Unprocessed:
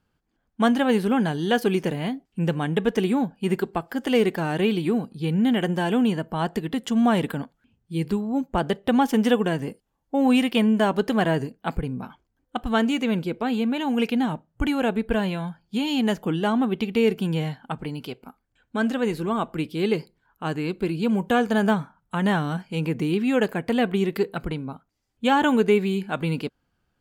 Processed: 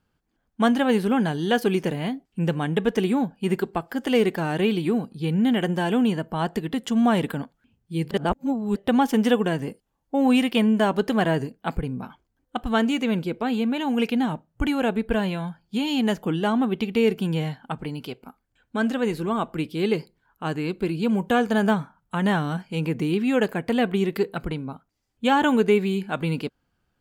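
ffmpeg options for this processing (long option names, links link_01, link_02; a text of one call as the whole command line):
ffmpeg -i in.wav -filter_complex "[0:a]asplit=3[link_01][link_02][link_03];[link_01]atrim=end=8.112[link_04];[link_02]atrim=start=8.108:end=8.762,asetpts=PTS-STARTPTS,areverse[link_05];[link_03]atrim=start=8.758[link_06];[link_04][link_05]acrossfade=duration=0.004:curve1=hsin:curve2=hsin[link_07];[link_07][link_06]acrossfade=duration=0.004:curve1=hsin:curve2=hsin" out.wav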